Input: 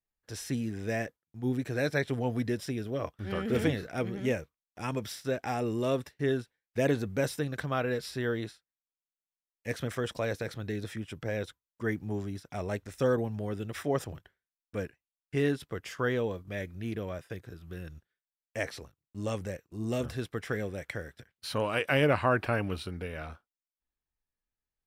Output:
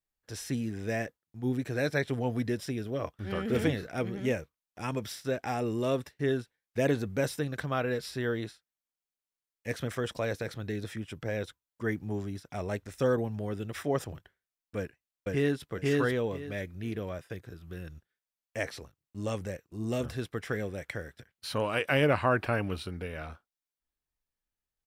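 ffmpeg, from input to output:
ffmpeg -i in.wav -filter_complex "[0:a]asplit=2[link_01][link_02];[link_02]afade=type=in:start_time=14.77:duration=0.01,afade=type=out:start_time=15.7:duration=0.01,aecho=0:1:490|980|1470:1|0.2|0.04[link_03];[link_01][link_03]amix=inputs=2:normalize=0" out.wav

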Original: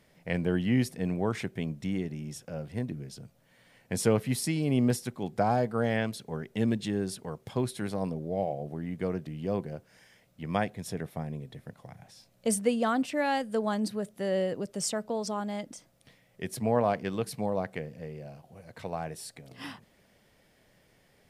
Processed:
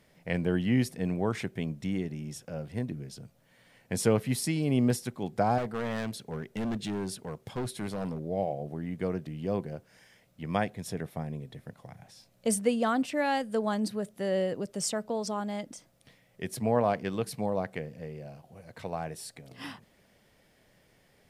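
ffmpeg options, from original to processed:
ffmpeg -i in.wav -filter_complex "[0:a]asettb=1/sr,asplit=3[link_01][link_02][link_03];[link_01]atrim=end=5.584[link_04];[link_02]atrim=start=5.58:end=8.24,asetpts=PTS-STARTPTS,afade=type=in:duration=0.004:curve=qsin,afade=type=out:start_time=2.656:duration=0.004:curve=qsin,asoftclip=type=hard:threshold=-29dB[link_05];[link_03]atrim=start=8.236[link_06];[link_04][link_05]acrossfade=duration=0.004:curve1=hsin:curve2=qsin[link_07];[link_07][link_06]acrossfade=duration=0.004:curve1=qsin:curve2=hsin" out.wav

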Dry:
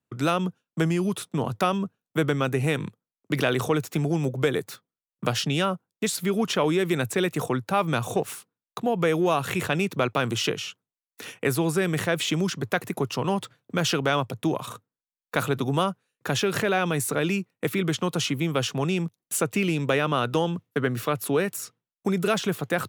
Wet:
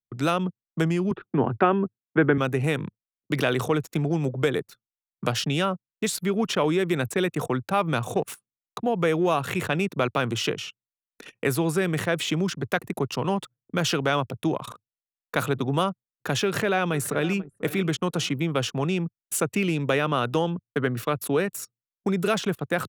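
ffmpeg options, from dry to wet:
ffmpeg -i in.wav -filter_complex "[0:a]asettb=1/sr,asplit=3[link_01][link_02][link_03];[link_01]atrim=end=1.114[link_04];[link_02]atrim=start=1.11:end=2.38,asetpts=PTS-STARTPTS,afade=type=in:duration=0.004:curve=qsin,afade=type=out:start_time=1.266:duration=0.004:curve=qsin,highpass=frequency=100:width=0.5412,highpass=frequency=100:width=1.3066,equalizer=frequency=110:width_type=q:width=4:gain=5,equalizer=frequency=260:width_type=q:width=4:gain=6,equalizer=frequency=380:width_type=q:width=4:gain=9,equalizer=frequency=810:width_type=q:width=4:gain=5,equalizer=frequency=1600:width_type=q:width=4:gain=8,lowpass=frequency=2600:width=0.5412,lowpass=frequency=2600:width=1.3066[link_05];[link_03]atrim=start=2.376[link_06];[link_04][link_05]acrossfade=duration=0.004:curve1=hsin:curve2=qsin[link_07];[link_07][link_06]acrossfade=duration=0.004:curve1=qsin:curve2=hsin,asplit=2[link_08][link_09];[link_09]afade=type=in:start_time=16.44:duration=0.01,afade=type=out:start_time=17.38:duration=0.01,aecho=0:1:490|980|1470:0.158489|0.0554713|0.0194149[link_10];[link_08][link_10]amix=inputs=2:normalize=0,anlmdn=2.51,adynamicequalizer=threshold=0.0141:dfrequency=3100:dqfactor=0.7:tfrequency=3100:tqfactor=0.7:attack=5:release=100:ratio=0.375:range=1.5:mode=cutabove:tftype=highshelf" out.wav

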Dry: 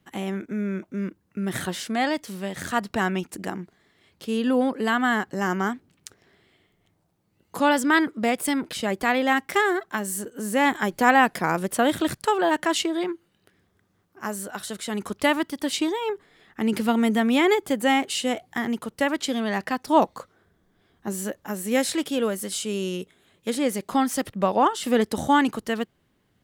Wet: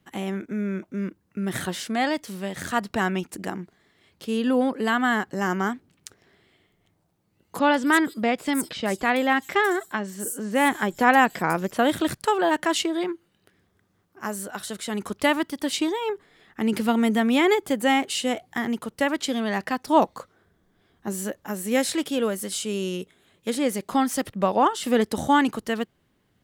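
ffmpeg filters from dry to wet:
ffmpeg -i in.wav -filter_complex "[0:a]asettb=1/sr,asplit=3[link_01][link_02][link_03];[link_01]atrim=end=7.594[link_04];[link_02]atrim=start=7.59:end=11.78,asetpts=PTS-STARTPTS,afade=type=in:duration=0.004:curve=qsin,afade=type=out:start_time=4.186:duration=0.004:curve=qsin,acrossover=split=5700[link_05][link_06];[link_06]adelay=150[link_07];[link_05][link_07]amix=inputs=2:normalize=0,atrim=end_sample=184779[link_08];[link_03]atrim=start=11.776[link_09];[link_04][link_08]acrossfade=duration=0.004:curve1=hsin:curve2=qsin[link_10];[link_10][link_09]acrossfade=duration=0.004:curve1=qsin:curve2=hsin" out.wav

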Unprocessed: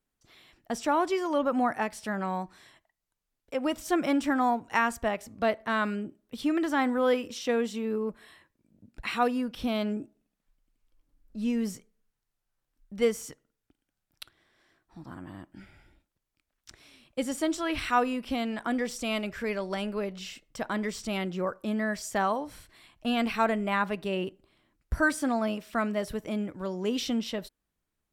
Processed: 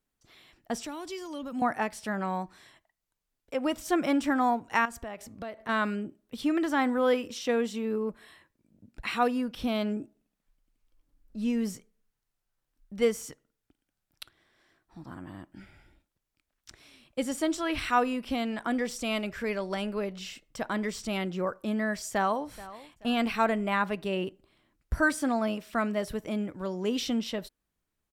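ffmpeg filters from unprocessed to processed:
ffmpeg -i in.wav -filter_complex "[0:a]asettb=1/sr,asplit=3[link_01][link_02][link_03];[link_01]atrim=end=0.834[link_04];[link_02]atrim=start=0.83:end=1.62,asetpts=PTS-STARTPTS,afade=type=in:duration=0.004:curve=qsin,afade=type=out:start_time=0.786:duration=0.004:curve=qsin,acrossover=split=230|3000[link_05][link_06][link_07];[link_06]acompressor=threshold=-48dB:ratio=2.5:attack=3.2:release=140:knee=2.83:detection=peak[link_08];[link_05][link_08][link_07]amix=inputs=3:normalize=0[link_09];[link_03]atrim=start=1.616[link_10];[link_04][link_09]acrossfade=duration=0.004:curve1=hsin:curve2=qsin[link_11];[link_11][link_10]acrossfade=duration=0.004:curve1=qsin:curve2=hsin,asettb=1/sr,asplit=3[link_12][link_13][link_14];[link_12]atrim=end=4.854[link_15];[link_13]atrim=start=4.85:end=5.69,asetpts=PTS-STARTPTS,afade=type=in:duration=0.004:curve=qsin,afade=type=out:start_time=0.836:duration=0.004:curve=qsin,acompressor=threshold=-36dB:ratio=4:attack=3.2:release=140:knee=1:detection=peak[link_16];[link_14]atrim=start=5.686[link_17];[link_15][link_16]acrossfade=duration=0.004:curve1=hsin:curve2=qsin[link_18];[link_18][link_17]acrossfade=duration=0.004:curve1=qsin:curve2=hsin,asplit=2[link_19][link_20];[link_20]afade=type=in:start_time=22.1:duration=0.01,afade=type=out:start_time=22.5:duration=0.01,aecho=0:1:430|860|1290:0.133352|0.0400056|0.0120017[link_21];[link_19][link_21]amix=inputs=2:normalize=0" out.wav

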